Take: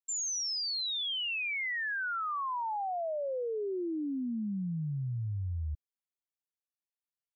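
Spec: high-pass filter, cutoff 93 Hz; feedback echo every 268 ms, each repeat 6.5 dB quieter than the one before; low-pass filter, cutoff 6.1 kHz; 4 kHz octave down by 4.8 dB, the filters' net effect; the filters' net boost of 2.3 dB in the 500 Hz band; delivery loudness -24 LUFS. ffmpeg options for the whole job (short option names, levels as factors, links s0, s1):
-af "highpass=93,lowpass=6100,equalizer=f=500:t=o:g=3,equalizer=f=4000:t=o:g=-5.5,aecho=1:1:268|536|804|1072|1340|1608:0.473|0.222|0.105|0.0491|0.0231|0.0109,volume=2.99"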